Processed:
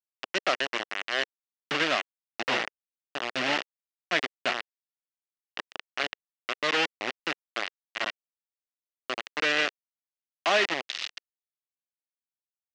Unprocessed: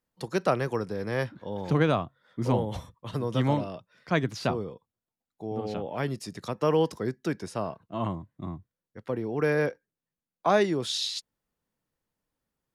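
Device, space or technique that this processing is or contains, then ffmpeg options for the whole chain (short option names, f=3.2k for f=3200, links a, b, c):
hand-held game console: -af "acrusher=bits=3:mix=0:aa=0.000001,highpass=460,equalizer=f=470:t=q:w=4:g=-6,equalizer=f=930:t=q:w=4:g=-6,equalizer=f=1.9k:t=q:w=4:g=6,equalizer=f=2.8k:t=q:w=4:g=7,lowpass=f=5.4k:w=0.5412,lowpass=f=5.4k:w=1.3066"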